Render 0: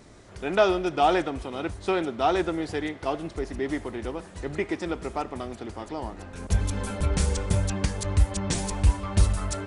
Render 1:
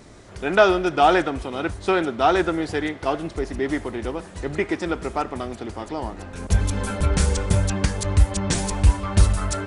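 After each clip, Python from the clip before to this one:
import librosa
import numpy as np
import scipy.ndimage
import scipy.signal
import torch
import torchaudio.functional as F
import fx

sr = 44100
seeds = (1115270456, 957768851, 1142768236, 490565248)

y = fx.dynamic_eq(x, sr, hz=1500.0, q=2.8, threshold_db=-43.0, ratio=4.0, max_db=5)
y = y * librosa.db_to_amplitude(4.5)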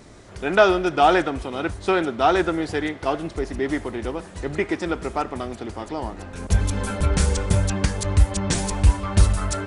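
y = x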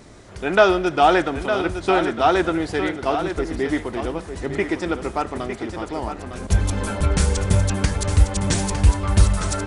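y = x + 10.0 ** (-8.5 / 20.0) * np.pad(x, (int(907 * sr / 1000.0), 0))[:len(x)]
y = y * librosa.db_to_amplitude(1.0)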